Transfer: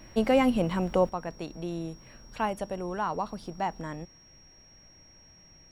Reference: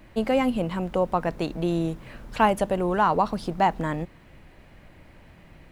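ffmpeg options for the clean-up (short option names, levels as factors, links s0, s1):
-af "bandreject=f=5600:w=30,asetnsamples=n=441:p=0,asendcmd='1.09 volume volume 9.5dB',volume=1"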